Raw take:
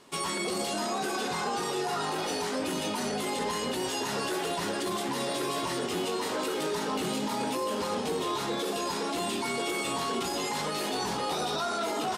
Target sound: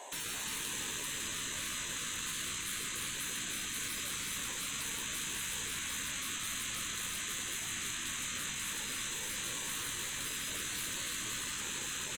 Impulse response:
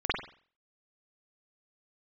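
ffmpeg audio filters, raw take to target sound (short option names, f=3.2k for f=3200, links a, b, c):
-filter_complex "[0:a]highpass=f=700:t=q:w=4.9,asoftclip=type=tanh:threshold=-31.5dB,superequalizer=10b=0.282:14b=0.282:15b=2.82,afftfilt=real='re*lt(hypot(re,im),0.0158)':imag='im*lt(hypot(re,im),0.0158)':win_size=1024:overlap=0.75,asplit=2[a][b];[b]aecho=0:1:338:0.501[c];[a][c]amix=inputs=2:normalize=0,volume=5.5dB"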